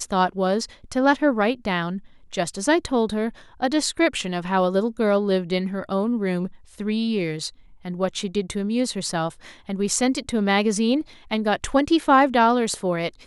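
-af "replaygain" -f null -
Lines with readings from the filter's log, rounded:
track_gain = +2.5 dB
track_peak = 0.396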